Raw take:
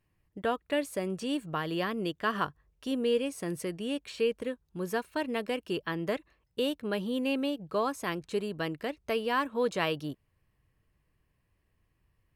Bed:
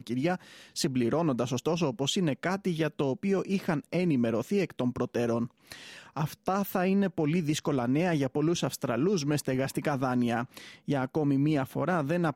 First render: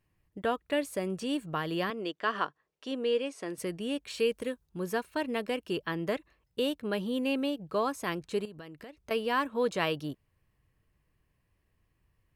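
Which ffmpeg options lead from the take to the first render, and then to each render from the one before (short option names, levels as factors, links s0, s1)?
-filter_complex "[0:a]asettb=1/sr,asplit=3[s0][s1][s2];[s0]atrim=end=1.904[s3];[s1]atrim=start=1.9:end=3.58,asetpts=PTS-STARTPTS,afade=t=in:d=0.004:c=qsin,afade=t=out:st=1.676:d=0.004:c=qsin,highpass=310,lowpass=6200[s4];[s2]atrim=start=3.576[s5];[s3][s4]acrossfade=d=0.004:c1=hsin:c2=qsin[s6];[s6][s5]acrossfade=d=0.004:c1=qsin:c2=hsin,asettb=1/sr,asplit=3[s7][s8][s9];[s7]atrim=end=4.104[s10];[s8]atrim=start=4.1:end=4.66,asetpts=PTS-STARTPTS,afade=t=in:d=0.004:c=qsin,afade=t=out:st=0.556:d=0.004:c=qsin,highshelf=f=4500:g=8[s11];[s9]atrim=start=4.656[s12];[s10][s11]acrossfade=d=0.004:c1=hsin:c2=qsin[s13];[s13][s12]acrossfade=d=0.004:c1=qsin:c2=hsin,asettb=1/sr,asplit=3[s14][s15][s16];[s14]atrim=end=8.454[s17];[s15]atrim=start=8.45:end=9.11,asetpts=PTS-STARTPTS,afade=t=in:d=0.004:c=qsin,afade=t=out:st=0.656:d=0.004:c=qsin,acompressor=threshold=0.00708:ratio=6:attack=3.2:release=140:knee=1:detection=peak[s18];[s16]atrim=start=9.106[s19];[s17][s18]acrossfade=d=0.004:c1=hsin:c2=qsin[s20];[s20][s19]acrossfade=d=0.004:c1=qsin:c2=hsin"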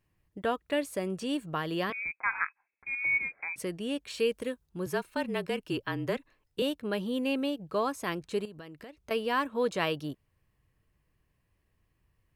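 -filter_complex "[0:a]asettb=1/sr,asplit=3[s0][s1][s2];[s0]atrim=end=1.924[s3];[s1]atrim=start=1.92:end=3.56,asetpts=PTS-STARTPTS,afade=t=in:d=0.004:c=qsin,afade=t=out:st=1.636:d=0.004:c=qsin,lowpass=f=2300:t=q:w=0.5098,lowpass=f=2300:t=q:w=0.6013,lowpass=f=2300:t=q:w=0.9,lowpass=f=2300:t=q:w=2.563,afreqshift=-2700[s4];[s2]atrim=start=3.556[s5];[s3][s4]acrossfade=d=0.004:c1=hsin:c2=qsin[s6];[s6][s5]acrossfade=d=0.004:c1=qsin:c2=hsin,asettb=1/sr,asplit=3[s7][s8][s9];[s7]atrim=end=4.864[s10];[s8]atrim=start=4.86:end=6.62,asetpts=PTS-STARTPTS,afade=t=in:d=0.004:c=qsin,afade=t=out:st=1.756:d=0.004:c=qsin,afreqshift=-33[s11];[s9]atrim=start=6.616[s12];[s10][s11]acrossfade=d=0.004:c1=hsin:c2=qsin[s13];[s13][s12]acrossfade=d=0.004:c1=qsin:c2=hsin"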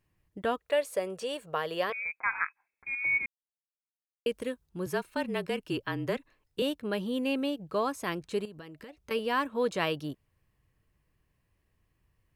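-filter_complex "[0:a]asettb=1/sr,asplit=3[s0][s1][s2];[s0]atrim=end=0.584[s3];[s1]atrim=start=0.58:end=2.12,asetpts=PTS-STARTPTS,afade=t=in:d=0.004:c=qsin,afade=t=out:st=1.536:d=0.004:c=qsin,lowshelf=f=370:t=q:w=3:g=-7.5[s4];[s2]atrim=start=2.116[s5];[s3][s4]acrossfade=d=0.004:c1=hsin:c2=qsin[s6];[s6][s5]acrossfade=d=0.004:c1=qsin:c2=hsin,asettb=1/sr,asplit=3[s7][s8][s9];[s7]atrim=end=8.624[s10];[s8]atrim=start=8.62:end=9.19,asetpts=PTS-STARTPTS,afade=t=in:d=0.004:c=qsin,afade=t=out:st=0.566:d=0.004:c=qsin,asuperstop=centerf=680:order=20:qfactor=7.8[s11];[s9]atrim=start=9.186[s12];[s10][s11]acrossfade=d=0.004:c1=hsin:c2=qsin[s13];[s13][s12]acrossfade=d=0.004:c1=qsin:c2=hsin,asplit=3[s14][s15][s16];[s14]atrim=end=3.26,asetpts=PTS-STARTPTS,afade=t=out:st=3.256:d=0.004:c=hsin[s17];[s15]atrim=start=3.26:end=4.26,asetpts=PTS-STARTPTS,volume=0[s18];[s16]atrim=start=4.26,asetpts=PTS-STARTPTS,afade=t=in:d=0.004:c=hsin[s19];[s17][s18][s19]concat=n=3:v=0:a=1"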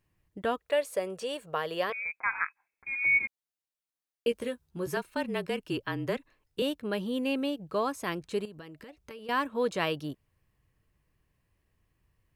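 -filter_complex "[0:a]asettb=1/sr,asplit=3[s0][s1][s2];[s0]atrim=end=2.914[s3];[s1]atrim=start=2.91:end=4.97,asetpts=PTS-STARTPTS,afade=t=in:d=0.004:c=qsin,afade=t=out:st=2.056:d=0.004:c=qsin,asplit=2[s4][s5];[s5]adelay=13,volume=0.562[s6];[s4][s6]amix=inputs=2:normalize=0,atrim=end_sample=90846[s7];[s2]atrim=start=4.966[s8];[s3][s7]acrossfade=d=0.004:c1=hsin:c2=qsin[s9];[s9][s8]acrossfade=d=0.004:c1=qsin:c2=hsin,asettb=1/sr,asplit=3[s10][s11][s12];[s10]atrim=end=8.664[s13];[s11]atrim=start=8.66:end=9.29,asetpts=PTS-STARTPTS,afade=t=in:d=0.004:c=qsin,afade=t=out:st=0.626:d=0.004:c=qsin,acompressor=threshold=0.00891:ratio=10:attack=3.2:release=140:knee=1:detection=peak[s14];[s12]atrim=start=9.286[s15];[s13][s14]acrossfade=d=0.004:c1=hsin:c2=qsin[s16];[s16][s15]acrossfade=d=0.004:c1=qsin:c2=hsin"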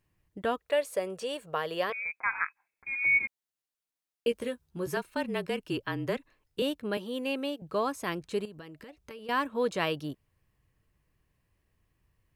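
-filter_complex "[0:a]asettb=1/sr,asplit=3[s0][s1][s2];[s0]atrim=end=6.974[s3];[s1]atrim=start=6.97:end=7.62,asetpts=PTS-STARTPTS,afade=t=in:d=0.004:c=qsin,afade=t=out:st=0.646:d=0.004:c=qsin,highpass=310[s4];[s2]atrim=start=7.616[s5];[s3][s4]acrossfade=d=0.004:c1=hsin:c2=qsin[s6];[s6][s5]acrossfade=d=0.004:c1=qsin:c2=hsin"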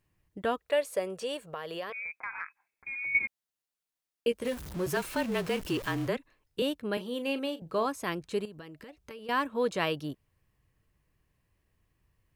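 -filter_complex "[0:a]asettb=1/sr,asplit=3[s0][s1][s2];[s0]atrim=end=1.504[s3];[s1]atrim=start=1.5:end=3.15,asetpts=PTS-STARTPTS,afade=t=in:d=0.004:c=qsin,afade=t=out:st=1.646:d=0.004:c=qsin,acompressor=threshold=0.0178:ratio=3:attack=3.2:release=140:knee=1:detection=peak[s4];[s2]atrim=start=3.146[s5];[s3][s4]acrossfade=d=0.004:c1=hsin:c2=qsin[s6];[s6][s5]acrossfade=d=0.004:c1=qsin:c2=hsin,asettb=1/sr,asplit=3[s7][s8][s9];[s7]atrim=end=4.454[s10];[s8]atrim=start=4.45:end=6.08,asetpts=PTS-STARTPTS,afade=t=in:d=0.004:c=qsin,afade=t=out:st=1.626:d=0.004:c=qsin,aeval=exprs='val(0)+0.5*0.015*sgn(val(0))':c=same[s11];[s9]atrim=start=6.076[s12];[s10][s11]acrossfade=d=0.004:c1=hsin:c2=qsin[s13];[s13][s12]acrossfade=d=0.004:c1=qsin:c2=hsin,asettb=1/sr,asplit=3[s14][s15][s16];[s14]atrim=end=6.944[s17];[s15]atrim=start=6.94:end=7.86,asetpts=PTS-STARTPTS,afade=t=in:d=0.004:c=qsin,afade=t=out:st=0.916:d=0.004:c=qsin,asplit=2[s18][s19];[s19]adelay=37,volume=0.224[s20];[s18][s20]amix=inputs=2:normalize=0,atrim=end_sample=40572[s21];[s16]atrim=start=7.856[s22];[s17][s21]acrossfade=d=0.004:c1=hsin:c2=qsin[s23];[s23][s22]acrossfade=d=0.004:c1=qsin:c2=hsin"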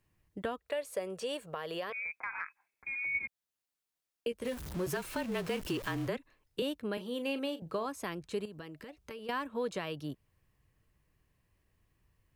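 -filter_complex "[0:a]acrossover=split=130[s0][s1];[s1]alimiter=limit=0.0841:level=0:latency=1:release=438[s2];[s0][s2]amix=inputs=2:normalize=0,acompressor=threshold=0.0224:ratio=2"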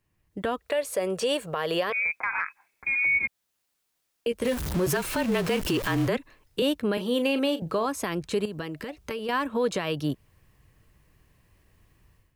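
-af "dynaudnorm=f=270:g=3:m=3.98,alimiter=limit=0.15:level=0:latency=1:release=75"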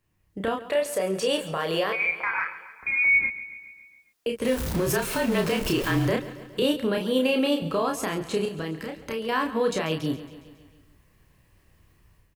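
-filter_complex "[0:a]asplit=2[s0][s1];[s1]adelay=31,volume=0.631[s2];[s0][s2]amix=inputs=2:normalize=0,aecho=1:1:138|276|414|552|690|828:0.168|0.101|0.0604|0.0363|0.0218|0.0131"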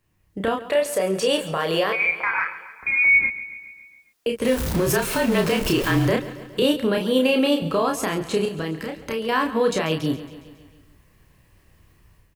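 -af "volume=1.58"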